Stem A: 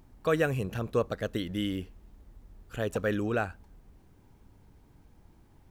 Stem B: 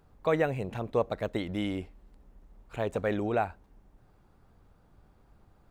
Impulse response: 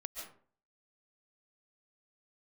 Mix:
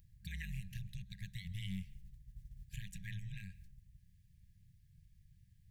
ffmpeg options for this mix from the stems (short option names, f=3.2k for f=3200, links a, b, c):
-filter_complex "[0:a]alimiter=limit=-24dB:level=0:latency=1:release=225,acompressor=threshold=-40dB:ratio=6,volume=0dB[a];[1:a]equalizer=f=70:t=o:w=0.64:g=-6.5,aeval=exprs='val(0)*sin(2*PI*94*n/s)':c=same,volume=-2.5dB,asplit=3[b][c][d];[c]volume=-12dB[e];[d]apad=whole_len=251605[f];[a][f]sidechaingate=range=-8dB:threshold=-59dB:ratio=16:detection=peak[g];[2:a]atrim=start_sample=2205[h];[e][h]afir=irnorm=-1:irlink=0[i];[g][b][i]amix=inputs=3:normalize=0,afftfilt=real='re*(1-between(b*sr/4096,200,1600))':imag='im*(1-between(b*sr/4096,200,1600))':win_size=4096:overlap=0.75,equalizer=f=930:w=0.36:g=-11.5"